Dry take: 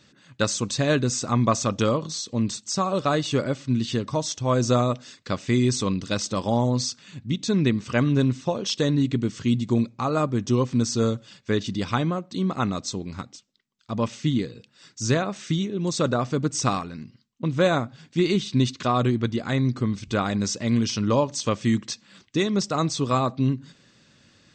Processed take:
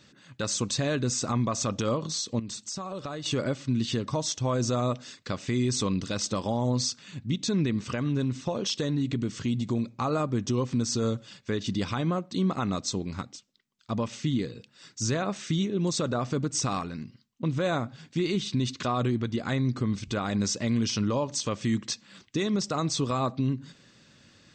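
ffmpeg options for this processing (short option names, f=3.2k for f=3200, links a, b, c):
-filter_complex "[0:a]asettb=1/sr,asplit=3[a][b][c];[a]atrim=end=2.394[d];[b]atrim=start=2.39:end=3.26,asetpts=PTS-STARTPTS,afade=t=in:d=0.004:c=qsin,afade=t=out:st=0.866:d=0.004:c=qsin,acompressor=threshold=-32dB:ratio=8:attack=3.2:release=140:knee=1:detection=peak[e];[c]atrim=start=3.256[f];[d][e]acrossfade=d=0.004:c1=hsin:c2=qsin[g];[g][f]acrossfade=d=0.004:c1=qsin:c2=hsin,asettb=1/sr,asplit=3[h][i][j];[h]atrim=end=7.954[k];[i]atrim=start=7.95:end=10.01,asetpts=PTS-STARTPTS,afade=t=in:d=0.004:c=qsin,afade=t=out:st=2.056:d=0.004:c=qsin,acompressor=threshold=-25dB:ratio=3:attack=3.2:release=140:knee=1:detection=peak[l];[j]atrim=start=10.006[m];[k][l]acrossfade=d=0.004:c1=hsin:c2=qsin[n];[n][m]acrossfade=d=0.004:c1=qsin:c2=hsin,alimiter=limit=-18.5dB:level=0:latency=1:release=112"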